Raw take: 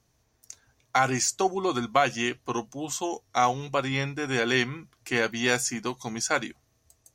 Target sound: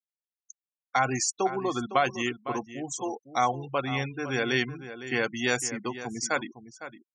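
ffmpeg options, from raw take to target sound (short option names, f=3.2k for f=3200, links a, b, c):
-filter_complex "[0:a]afftfilt=real='re*gte(hypot(re,im),0.0316)':imag='im*gte(hypot(re,im),0.0316)':win_size=1024:overlap=0.75,asplit=2[a][b];[b]adelay=507.3,volume=-12dB,highshelf=f=4k:g=-11.4[c];[a][c]amix=inputs=2:normalize=0,volume=-2dB"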